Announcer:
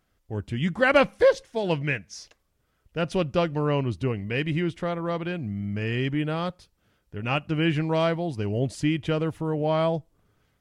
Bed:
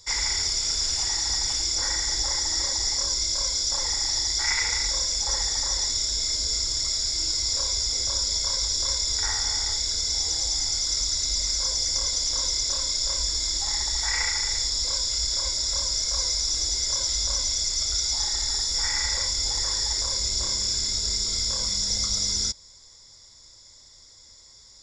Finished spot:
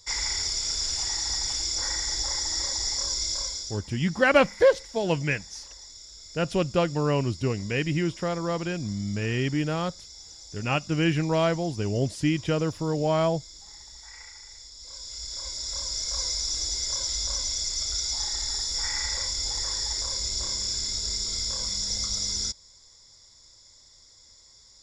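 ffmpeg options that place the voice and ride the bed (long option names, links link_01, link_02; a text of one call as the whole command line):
ffmpeg -i stem1.wav -i stem2.wav -filter_complex "[0:a]adelay=3400,volume=0dB[link_01];[1:a]volume=13.5dB,afade=type=out:start_time=3.32:duration=0.49:silence=0.141254,afade=type=in:start_time=14.77:duration=1.45:silence=0.149624[link_02];[link_01][link_02]amix=inputs=2:normalize=0" out.wav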